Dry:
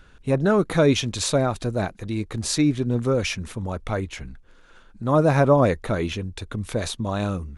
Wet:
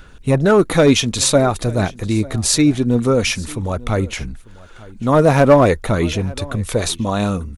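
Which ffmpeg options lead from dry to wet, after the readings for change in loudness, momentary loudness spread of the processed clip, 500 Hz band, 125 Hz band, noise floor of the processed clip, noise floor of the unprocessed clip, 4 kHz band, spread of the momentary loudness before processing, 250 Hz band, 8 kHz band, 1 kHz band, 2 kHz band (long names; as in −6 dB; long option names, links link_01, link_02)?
+6.5 dB, 11 LU, +6.5 dB, +5.5 dB, −40 dBFS, −51 dBFS, +8.0 dB, 13 LU, +6.5 dB, +10.0 dB, +6.5 dB, +7.0 dB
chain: -filter_complex "[0:a]highshelf=frequency=9700:gain=10,bandreject=frequency=1600:width=27,asoftclip=type=hard:threshold=-11.5dB,aphaser=in_gain=1:out_gain=1:delay=4.4:decay=0.27:speed=0.48:type=sinusoidal,asplit=2[link_01][link_02];[link_02]aecho=0:1:895:0.0841[link_03];[link_01][link_03]amix=inputs=2:normalize=0,volume=6.5dB"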